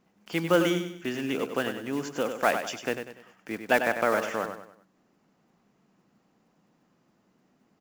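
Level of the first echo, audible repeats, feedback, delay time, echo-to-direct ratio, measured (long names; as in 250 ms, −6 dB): −8.0 dB, 4, 39%, 97 ms, −7.5 dB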